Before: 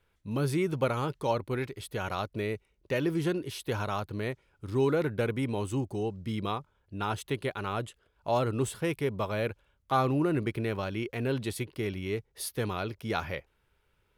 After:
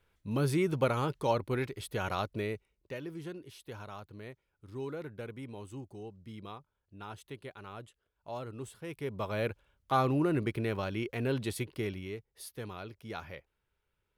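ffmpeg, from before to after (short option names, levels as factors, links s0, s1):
-af "volume=3.55,afade=t=out:st=2.23:d=0.78:silence=0.237137,afade=t=in:st=8.84:d=0.61:silence=0.266073,afade=t=out:st=11.78:d=0.4:silence=0.375837"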